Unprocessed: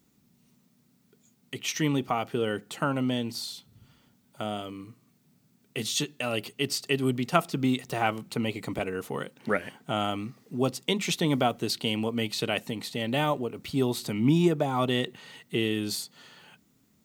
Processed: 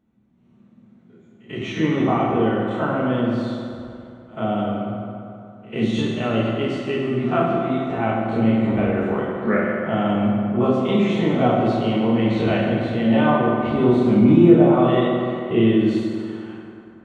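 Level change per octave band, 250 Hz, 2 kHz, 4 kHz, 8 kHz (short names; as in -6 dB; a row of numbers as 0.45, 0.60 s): +11.5 dB, +5.0 dB, -2.5 dB, under -10 dB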